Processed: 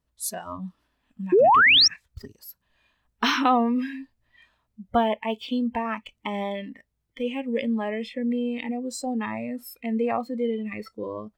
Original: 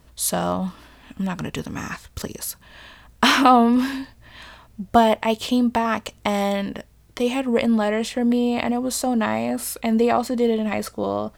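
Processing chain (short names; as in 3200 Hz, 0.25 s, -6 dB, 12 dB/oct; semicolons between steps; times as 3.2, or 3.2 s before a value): spectral noise reduction 18 dB; painted sound rise, 1.32–1.88, 330–5900 Hz -9 dBFS; gain -6.5 dB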